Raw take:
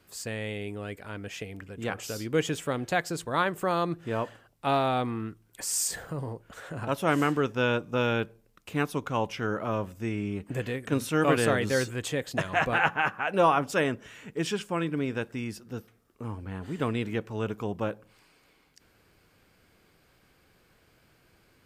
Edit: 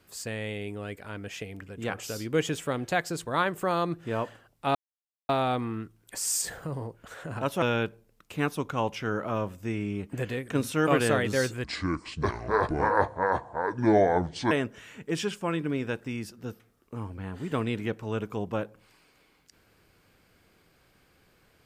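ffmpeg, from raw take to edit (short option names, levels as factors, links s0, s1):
-filter_complex "[0:a]asplit=5[s0][s1][s2][s3][s4];[s0]atrim=end=4.75,asetpts=PTS-STARTPTS,afade=t=out:st=4.746:d=0.004:c=hsin,apad=pad_dur=0.54[s5];[s1]atrim=start=4.75:end=7.082,asetpts=PTS-STARTPTS,afade=t=in:d=0.004:c=hsin[s6];[s2]atrim=start=7.988:end=12.014[s7];[s3]atrim=start=12.01:end=13.79,asetpts=PTS-STARTPTS,asetrate=27342,aresample=44100[s8];[s4]atrim=start=13.786[s9];[s5][s6]concat=n=2:v=0:a=1[s10];[s10][s7]acrossfade=d=0.004:c1=hsin:c2=hsin[s11];[s11][s8]acrossfade=d=0.004:c1=hsin:c2=hsin[s12];[s12][s9]acrossfade=d=0.004:c1=hsin:c2=hsin"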